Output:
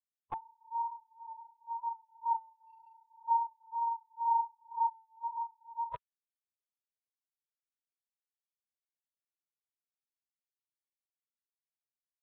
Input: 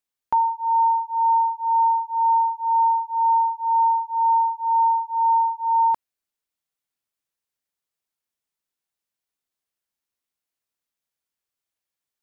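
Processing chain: LPC vocoder at 8 kHz whisper; 2.61–3.10 s: compression, threshold -20 dBFS, peak gain reduction 4.5 dB; spectral noise reduction 30 dB; trim -6 dB

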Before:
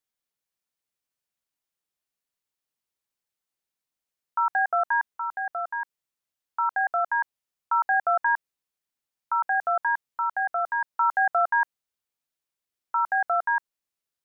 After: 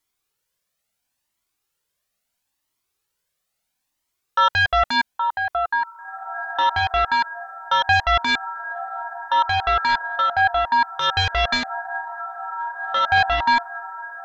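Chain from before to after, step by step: echo that smears into a reverb 1947 ms, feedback 51%, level -15 dB; sine folder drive 7 dB, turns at -13.5 dBFS; Shepard-style flanger rising 0.74 Hz; trim +4 dB

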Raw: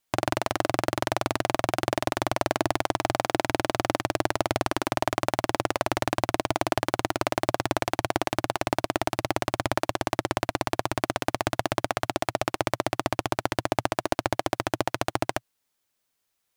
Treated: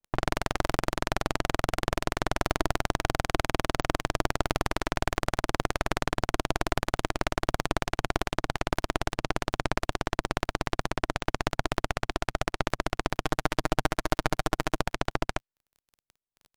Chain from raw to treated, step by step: 13.21–14.76 s: comb 6.5 ms, depth 60%; level-controlled noise filter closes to 600 Hz, open at -24 dBFS; crackle 26 per s -37 dBFS; half-wave rectifier; reverb removal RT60 0.95 s; half-wave rectifier; bass shelf 140 Hz +6 dB

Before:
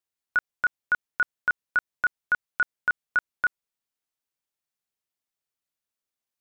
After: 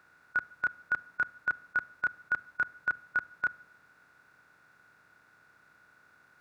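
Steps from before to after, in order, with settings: spectral levelling over time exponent 0.4; high-pass 83 Hz; bass shelf 190 Hz +7 dB; band-stop 3.1 kHz, Q 5.7; simulated room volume 3000 m³, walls furnished, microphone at 0.47 m; trim -6.5 dB

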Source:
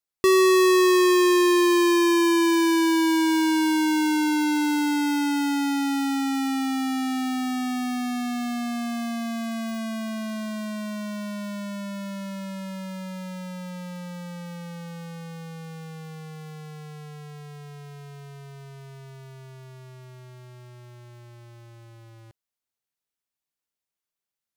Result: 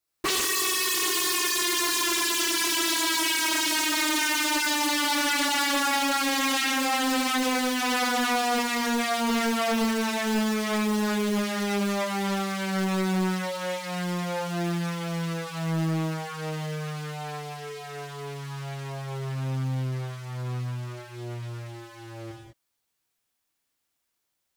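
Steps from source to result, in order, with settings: gated-style reverb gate 230 ms flat, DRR -6.5 dB; wavefolder -23 dBFS; loudspeaker Doppler distortion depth 0.84 ms; trim +3 dB

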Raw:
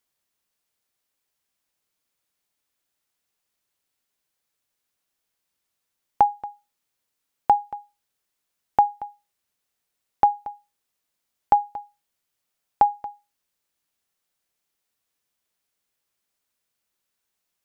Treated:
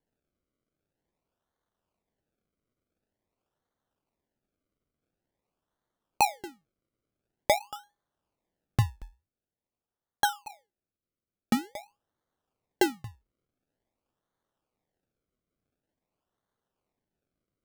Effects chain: 9.01–11.64 s: treble shelf 2 kHz -11.5 dB; decimation with a swept rate 34×, swing 100% 0.47 Hz; trim -6.5 dB

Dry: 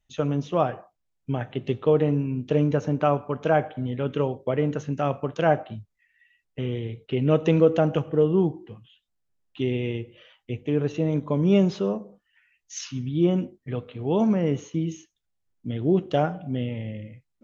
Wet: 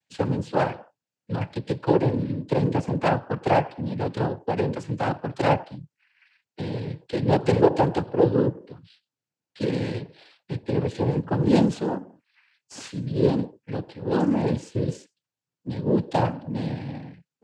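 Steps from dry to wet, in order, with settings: tracing distortion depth 0.2 ms; noise-vocoded speech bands 8

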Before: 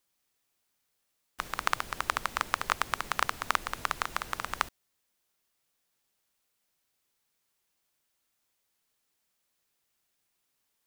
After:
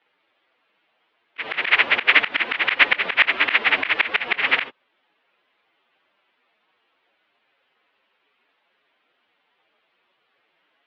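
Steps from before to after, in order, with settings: frequency-domain pitch shifter +11.5 st; slow attack 146 ms; mistuned SSB -200 Hz 520–3400 Hz; loudness maximiser +27.5 dB; trim -1 dB

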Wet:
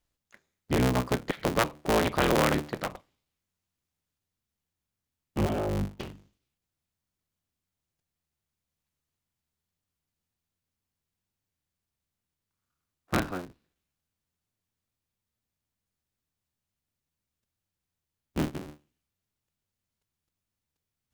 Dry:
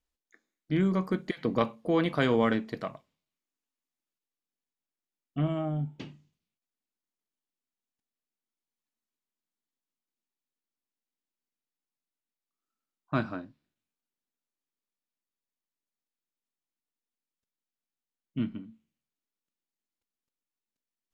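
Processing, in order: cycle switcher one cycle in 3, inverted; in parallel at -2 dB: compression, threshold -40 dBFS, peak gain reduction 18.5 dB

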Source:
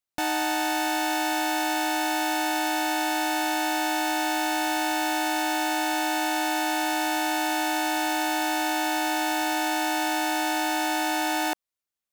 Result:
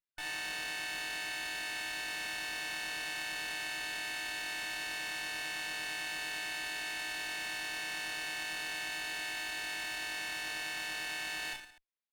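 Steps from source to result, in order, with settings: brick-wall FIR band-pass 1.5–9.2 kHz; reverse bouncing-ball echo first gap 30 ms, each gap 1.25×, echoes 5; sliding maximum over 5 samples; trim -8 dB

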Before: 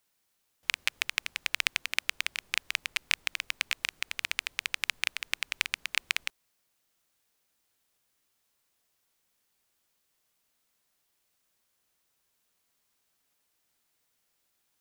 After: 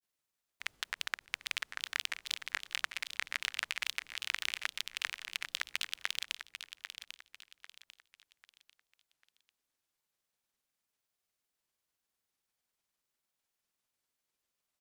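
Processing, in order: level held to a coarse grid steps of 17 dB; granulator, pitch spread up and down by 7 st; feedback delay 795 ms, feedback 35%, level -9.5 dB

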